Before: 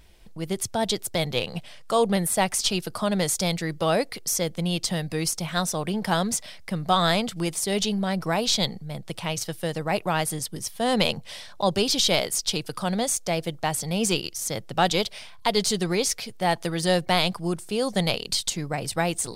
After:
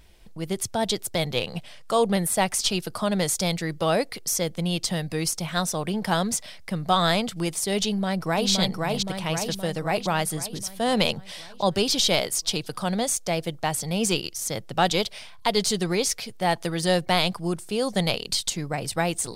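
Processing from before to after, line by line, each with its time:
7.85–8.5 echo throw 0.52 s, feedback 60%, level -2.5 dB

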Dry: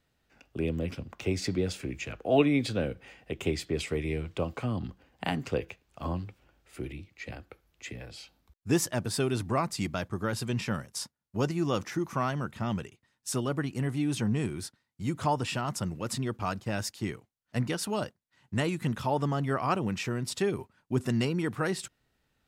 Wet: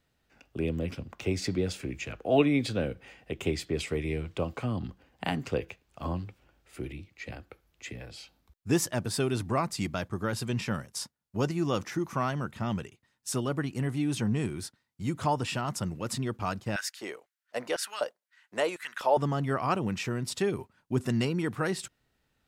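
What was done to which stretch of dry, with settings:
16.76–19.17 LFO high-pass square 2 Hz 540–1600 Hz

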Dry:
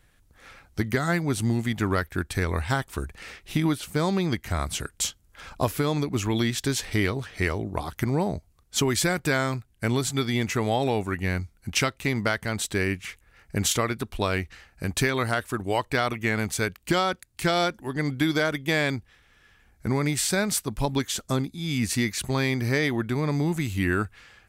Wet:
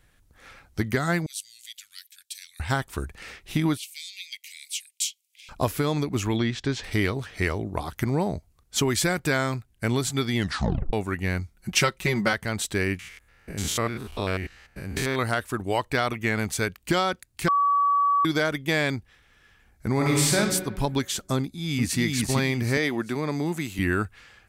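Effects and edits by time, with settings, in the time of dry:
1.26–2.6 inverse Chebyshev high-pass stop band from 950 Hz, stop band 60 dB
3.77–5.49 steep high-pass 2200 Hz 72 dB/oct
6.36–6.84 air absorption 140 m
10.36 tape stop 0.57 s
11.56–12.33 comb 5.4 ms, depth 87%
12.99–15.19 stepped spectrum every 0.1 s
17.48–18.25 bleep 1140 Hz -18 dBFS
19.93–20.36 reverb throw, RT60 1.3 s, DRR -2.5 dB
21.39–22 echo throw 0.39 s, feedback 30%, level -2 dB
22.77–23.79 HPF 190 Hz

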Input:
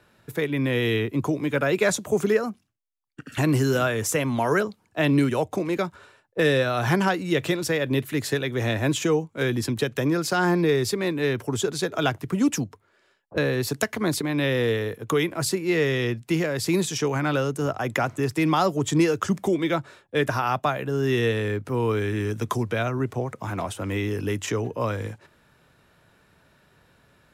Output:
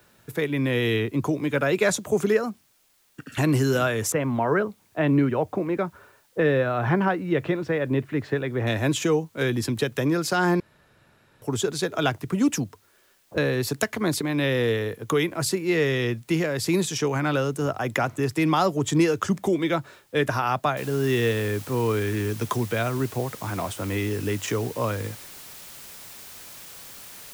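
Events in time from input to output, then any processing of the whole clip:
4.12–8.67 LPF 1900 Hz
10.6–11.42 room tone
20.77 noise floor step -64 dB -43 dB

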